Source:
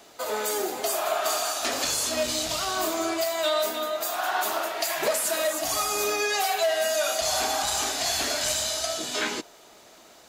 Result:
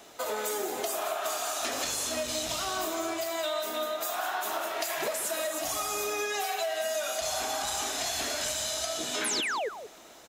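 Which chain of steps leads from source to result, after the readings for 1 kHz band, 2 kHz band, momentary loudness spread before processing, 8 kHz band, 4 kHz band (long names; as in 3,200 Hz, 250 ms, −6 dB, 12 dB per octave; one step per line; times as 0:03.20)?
−4.5 dB, −4.5 dB, 3 LU, −4.5 dB, −5.0 dB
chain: notch filter 4,600 Hz, Q 12
downward compressor, threshold −29 dBFS, peak gain reduction 9 dB
sound drawn into the spectrogram fall, 0:09.24–0:09.69, 380–12,000 Hz −31 dBFS
on a send: single-tap delay 181 ms −11 dB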